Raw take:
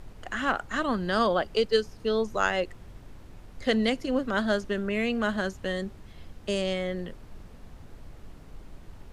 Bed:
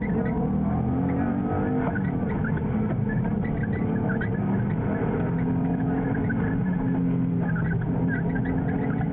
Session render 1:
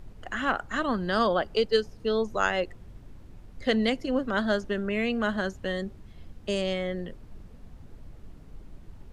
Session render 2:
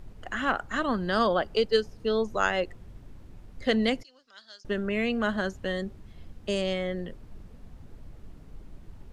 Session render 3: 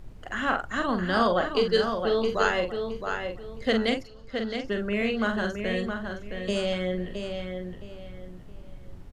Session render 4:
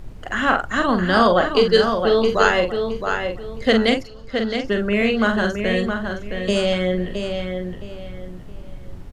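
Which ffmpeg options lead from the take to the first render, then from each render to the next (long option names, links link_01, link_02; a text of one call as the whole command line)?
ffmpeg -i in.wav -af "afftdn=noise_reduction=6:noise_floor=-48" out.wav
ffmpeg -i in.wav -filter_complex "[0:a]asettb=1/sr,asplit=3[link_01][link_02][link_03];[link_01]atrim=end=4.034[link_04];[link_02]atrim=start=4.03:end=4.65,asetpts=PTS-STARTPTS,afade=type=in:duration=0.004:curve=qsin,afade=type=out:start_time=0.616:duration=0.004:curve=qsin,bandpass=frequency=5100:width_type=q:width=4.5[link_05];[link_03]atrim=start=4.646[link_06];[link_04][link_05]acrossfade=duration=0.004:curve1=hsin:curve2=qsin[link_07];[link_07][link_06]acrossfade=duration=0.004:curve1=qsin:curve2=hsin" out.wav
ffmpeg -i in.wav -filter_complex "[0:a]asplit=2[link_01][link_02];[link_02]adelay=44,volume=-6dB[link_03];[link_01][link_03]amix=inputs=2:normalize=0,asplit=2[link_04][link_05];[link_05]adelay=667,lowpass=frequency=4500:poles=1,volume=-6dB,asplit=2[link_06][link_07];[link_07]adelay=667,lowpass=frequency=4500:poles=1,volume=0.29,asplit=2[link_08][link_09];[link_09]adelay=667,lowpass=frequency=4500:poles=1,volume=0.29,asplit=2[link_10][link_11];[link_11]adelay=667,lowpass=frequency=4500:poles=1,volume=0.29[link_12];[link_06][link_08][link_10][link_12]amix=inputs=4:normalize=0[link_13];[link_04][link_13]amix=inputs=2:normalize=0" out.wav
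ffmpeg -i in.wav -af "volume=8dB,alimiter=limit=-1dB:level=0:latency=1" out.wav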